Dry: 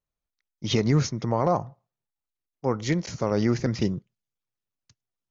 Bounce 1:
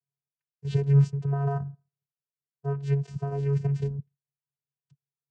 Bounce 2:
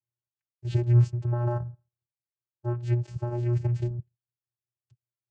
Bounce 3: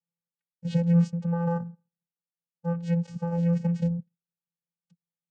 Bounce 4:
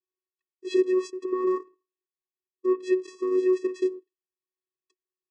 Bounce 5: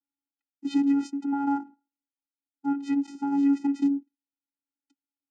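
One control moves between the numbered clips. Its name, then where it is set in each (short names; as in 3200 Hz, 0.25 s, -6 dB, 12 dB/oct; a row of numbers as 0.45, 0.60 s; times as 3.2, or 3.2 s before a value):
vocoder, frequency: 140, 120, 170, 370, 280 Hz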